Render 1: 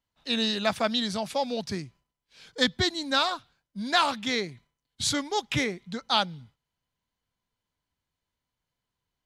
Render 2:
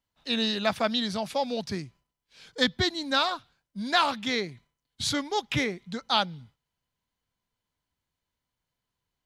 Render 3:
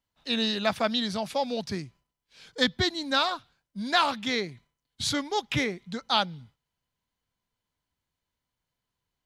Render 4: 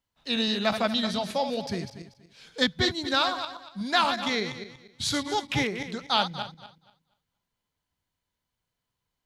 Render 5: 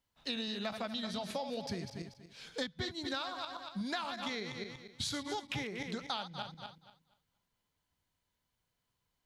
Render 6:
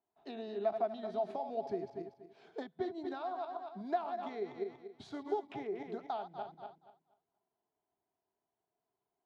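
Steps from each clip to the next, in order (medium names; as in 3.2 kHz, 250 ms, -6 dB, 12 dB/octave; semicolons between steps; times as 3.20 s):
dynamic bell 8 kHz, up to -6 dB, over -47 dBFS, Q 1.5
no audible change
backward echo that repeats 119 ms, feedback 46%, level -8 dB
compression 10:1, threshold -35 dBFS, peak gain reduction 17.5 dB
two resonant band-passes 520 Hz, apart 0.76 oct; trim +10 dB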